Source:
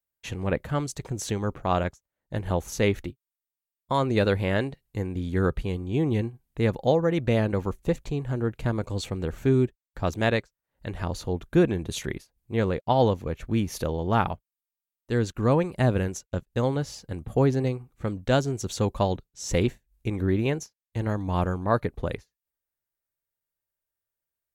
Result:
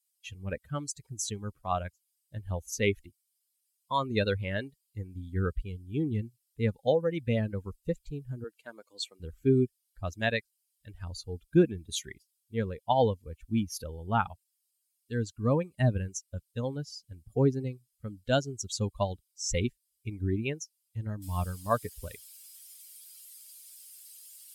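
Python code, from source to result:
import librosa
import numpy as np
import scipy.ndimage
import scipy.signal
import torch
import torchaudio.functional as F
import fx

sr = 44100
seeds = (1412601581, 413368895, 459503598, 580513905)

y = fx.highpass(x, sr, hz=350.0, slope=12, at=(8.44, 9.2))
y = fx.noise_floor_step(y, sr, seeds[0], at_s=21.22, before_db=-55, after_db=-41, tilt_db=0.0)
y = fx.bin_expand(y, sr, power=2.0)
y = scipy.signal.sosfilt(scipy.signal.butter(2, 10000.0, 'lowpass', fs=sr, output='sos'), y)
y = fx.high_shelf(y, sr, hz=3700.0, db=7.0)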